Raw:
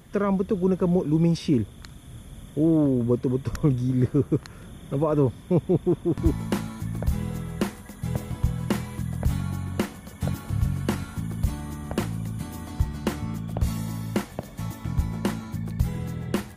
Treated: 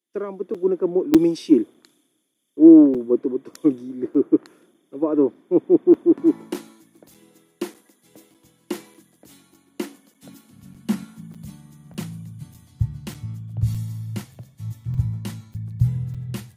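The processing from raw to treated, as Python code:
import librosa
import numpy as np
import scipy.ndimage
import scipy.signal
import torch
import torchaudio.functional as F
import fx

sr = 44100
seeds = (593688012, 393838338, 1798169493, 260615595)

y = fx.filter_sweep_highpass(x, sr, from_hz=320.0, to_hz=120.0, start_s=9.56, end_s=12.78, q=4.3)
y = fx.buffer_crackle(y, sr, first_s=0.54, period_s=0.6, block=256, kind='zero')
y = fx.band_widen(y, sr, depth_pct=100)
y = y * 10.0 ** (-6.5 / 20.0)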